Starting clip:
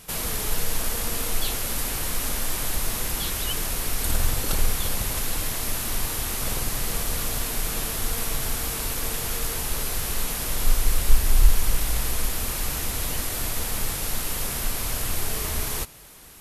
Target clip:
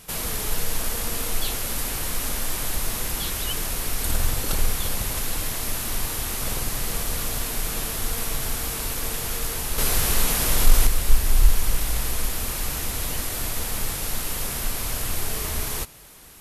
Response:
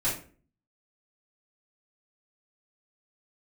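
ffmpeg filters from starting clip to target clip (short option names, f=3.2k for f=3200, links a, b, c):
-filter_complex "[0:a]asettb=1/sr,asplit=3[a][b][c];[a]atrim=end=9.784[d];[b]atrim=start=9.78:end=10.87,asetpts=PTS-STARTPTS,afade=t=in:d=0.004:c=qsin,afade=t=out:st=1.086:d=0.004:c=qsin,acontrast=57[e];[c]atrim=start=10.866[f];[d][e]acrossfade=d=0.004:c1=hsin:c2=qsin[g];[g][f]acrossfade=d=0.004:c1=qsin:c2=hsin"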